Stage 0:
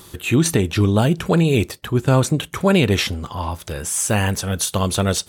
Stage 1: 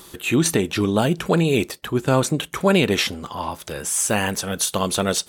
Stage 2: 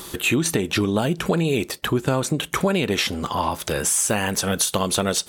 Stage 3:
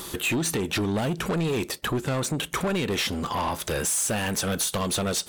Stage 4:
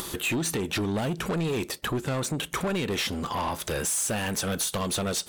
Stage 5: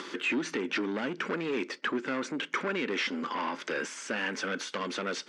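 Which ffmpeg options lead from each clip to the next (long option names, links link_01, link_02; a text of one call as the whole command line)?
ffmpeg -i in.wav -af "equalizer=frequency=87:width_type=o:width=1.2:gain=-12.5" out.wav
ffmpeg -i in.wav -af "acompressor=threshold=-25dB:ratio=6,volume=7dB" out.wav
ffmpeg -i in.wav -af "asoftclip=type=tanh:threshold=-21.5dB" out.wav
ffmpeg -i in.wav -af "acompressor=mode=upward:threshold=-29dB:ratio=2.5,volume=-2dB" out.wav
ffmpeg -i in.wav -af "highpass=frequency=240:width=0.5412,highpass=frequency=240:width=1.3066,equalizer=frequency=260:width_type=q:width=4:gain=5,equalizer=frequency=710:width_type=q:width=4:gain=-9,equalizer=frequency=1500:width_type=q:width=4:gain=6,equalizer=frequency=2100:width_type=q:width=4:gain=6,equalizer=frequency=3900:width_type=q:width=4:gain=-7,lowpass=frequency=5200:width=0.5412,lowpass=frequency=5200:width=1.3066,volume=-2.5dB" out.wav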